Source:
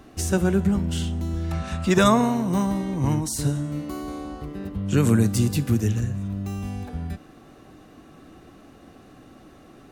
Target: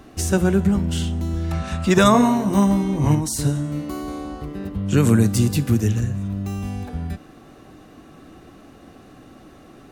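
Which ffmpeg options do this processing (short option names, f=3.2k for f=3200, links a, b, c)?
-filter_complex "[0:a]asettb=1/sr,asplit=3[a][b][c];[a]atrim=end=2.124[d];[b]atrim=start=2.12:end=3.15,asetpts=PTS-STARTPTS,afade=t=in:d=0.004:c=qsin,afade=t=out:st=1.026:d=0.004:c=qsin,asplit=2[e][f];[f]adelay=20,volume=-3.5dB[g];[e][g]amix=inputs=2:normalize=0,atrim=end_sample=45423[h];[c]atrim=start=3.146[i];[d][h]acrossfade=d=0.004:c1=hsin:c2=qsin[j];[j][i]acrossfade=d=0.004:c1=qsin:c2=hsin,volume=3dB"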